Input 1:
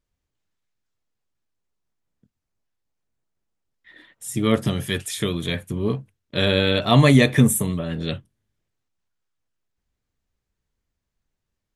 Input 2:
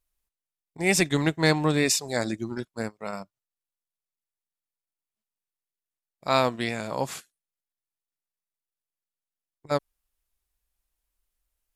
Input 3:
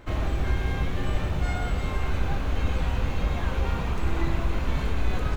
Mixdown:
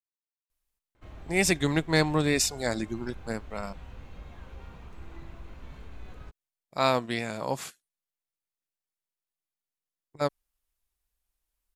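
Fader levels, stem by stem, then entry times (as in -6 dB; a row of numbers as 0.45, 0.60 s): off, -2.0 dB, -19.0 dB; off, 0.50 s, 0.95 s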